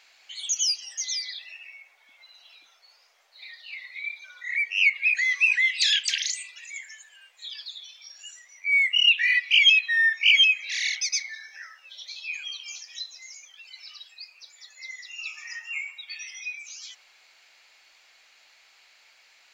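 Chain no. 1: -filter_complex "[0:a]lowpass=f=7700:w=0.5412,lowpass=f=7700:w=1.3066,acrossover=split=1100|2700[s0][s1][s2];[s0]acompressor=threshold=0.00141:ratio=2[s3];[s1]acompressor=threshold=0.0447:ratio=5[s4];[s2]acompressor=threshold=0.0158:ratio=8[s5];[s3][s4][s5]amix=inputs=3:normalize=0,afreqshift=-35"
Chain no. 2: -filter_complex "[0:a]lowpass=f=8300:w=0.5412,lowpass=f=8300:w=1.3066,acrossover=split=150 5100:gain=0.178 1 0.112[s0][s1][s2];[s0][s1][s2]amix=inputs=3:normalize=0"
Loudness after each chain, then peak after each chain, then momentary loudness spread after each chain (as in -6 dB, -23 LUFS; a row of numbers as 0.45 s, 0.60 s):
-29.5 LUFS, -22.0 LUFS; -17.0 dBFS, -7.5 dBFS; 19 LU, 22 LU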